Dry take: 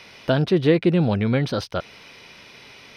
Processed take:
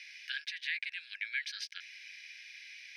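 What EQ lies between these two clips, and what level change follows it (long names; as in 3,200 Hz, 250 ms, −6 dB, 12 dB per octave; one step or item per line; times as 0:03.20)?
Chebyshev high-pass with heavy ripple 1,600 Hz, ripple 6 dB
high-shelf EQ 5,300 Hz −11 dB
+1.5 dB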